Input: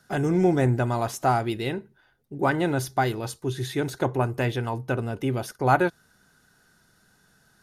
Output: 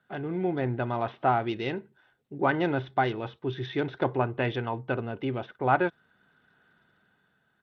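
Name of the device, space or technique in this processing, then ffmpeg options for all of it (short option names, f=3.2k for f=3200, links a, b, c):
Bluetooth headset: -af "highpass=f=160:p=1,dynaudnorm=f=170:g=9:m=8dB,aresample=8000,aresample=44100,volume=-8dB" -ar 32000 -c:a sbc -b:a 64k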